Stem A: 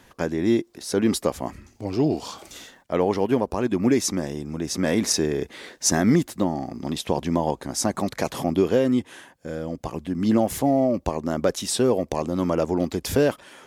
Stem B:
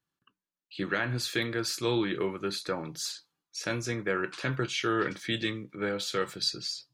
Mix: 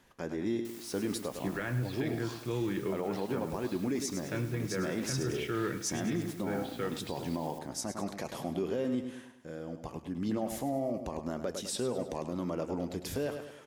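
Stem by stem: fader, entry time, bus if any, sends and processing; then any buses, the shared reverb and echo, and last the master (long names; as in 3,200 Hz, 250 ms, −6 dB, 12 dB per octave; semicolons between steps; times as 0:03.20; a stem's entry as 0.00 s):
−6.5 dB, 0.00 s, no send, echo send −10 dB, flanger 0.35 Hz, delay 5 ms, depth 2.1 ms, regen −76%
0.0 dB, 0.65 s, no send, echo send −21.5 dB, low-pass filter 3,200 Hz 24 dB per octave; low-shelf EQ 320 Hz +11 dB; bit-depth reduction 8 bits, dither triangular; automatic ducking −8 dB, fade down 1.80 s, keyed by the first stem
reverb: not used
echo: repeating echo 103 ms, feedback 44%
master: brickwall limiter −23.5 dBFS, peak gain reduction 7 dB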